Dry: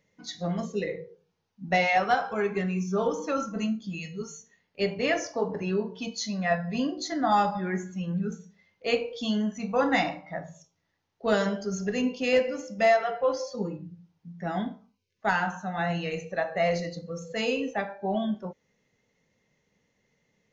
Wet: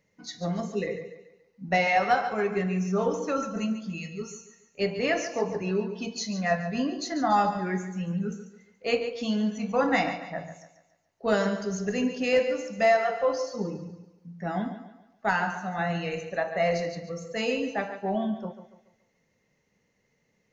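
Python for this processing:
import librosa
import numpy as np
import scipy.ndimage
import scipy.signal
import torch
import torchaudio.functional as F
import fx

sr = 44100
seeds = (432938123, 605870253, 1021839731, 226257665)

y = fx.peak_eq(x, sr, hz=3400.0, db=-7.5, octaves=0.2)
y = fx.echo_thinned(y, sr, ms=142, feedback_pct=41, hz=150.0, wet_db=-11.0)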